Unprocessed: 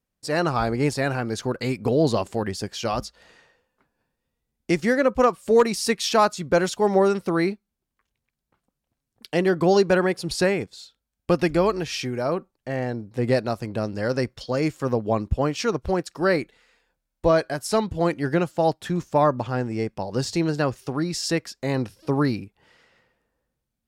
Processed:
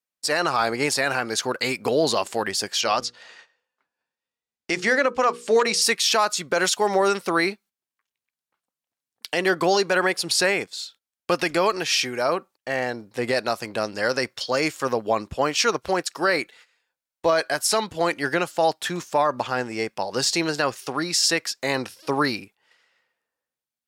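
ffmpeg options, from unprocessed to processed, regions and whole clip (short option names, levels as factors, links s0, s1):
-filter_complex "[0:a]asettb=1/sr,asplit=3[s0][s1][s2];[s0]atrim=end=2.814[s3];[s1]atrim=start=2.81:end=5.82,asetpts=PTS-STARTPTS,afade=t=in:d=0.004:c=qsin,afade=t=out:st=3.006:d=0.004:c=qsin,lowpass=7200,bandreject=f=60:t=h:w=6,bandreject=f=120:t=h:w=6,bandreject=f=180:t=h:w=6,bandreject=f=240:t=h:w=6,bandreject=f=300:t=h:w=6,bandreject=f=360:t=h:w=6,bandreject=f=420:t=h:w=6,bandreject=f=480:t=h:w=6[s4];[s2]atrim=start=5.816[s5];[s3][s4]acrossfade=d=0.004:c1=hsin:c2=qsin[s6];[s6][s5]acrossfade=d=0.004:c1=qsin:c2=hsin,highpass=f=1300:p=1,agate=range=0.224:threshold=0.00141:ratio=16:detection=peak,alimiter=level_in=8.91:limit=0.891:release=50:level=0:latency=1,volume=0.355"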